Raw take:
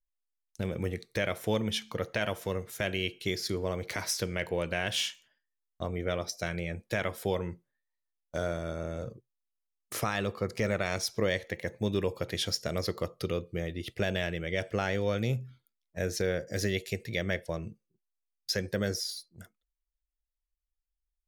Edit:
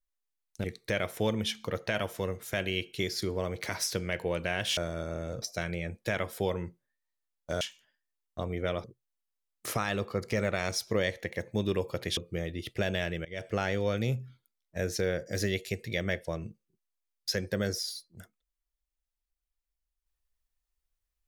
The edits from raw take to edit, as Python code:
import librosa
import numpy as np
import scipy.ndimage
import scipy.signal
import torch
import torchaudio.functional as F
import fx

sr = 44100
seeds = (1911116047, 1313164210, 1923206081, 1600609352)

y = fx.edit(x, sr, fx.cut(start_s=0.64, length_s=0.27),
    fx.swap(start_s=5.04, length_s=1.23, other_s=8.46, other_length_s=0.65),
    fx.cut(start_s=12.44, length_s=0.94),
    fx.fade_in_from(start_s=14.46, length_s=0.29, floor_db=-22.5), tone=tone)